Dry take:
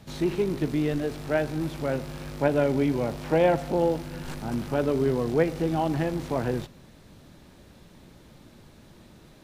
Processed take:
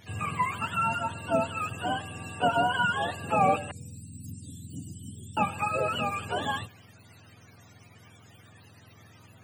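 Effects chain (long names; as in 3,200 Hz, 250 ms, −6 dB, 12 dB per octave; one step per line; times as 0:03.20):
frequency axis turned over on the octave scale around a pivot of 640 Hz
0:03.71–0:05.37: elliptic band-stop filter 240–5,400 Hz, stop band 80 dB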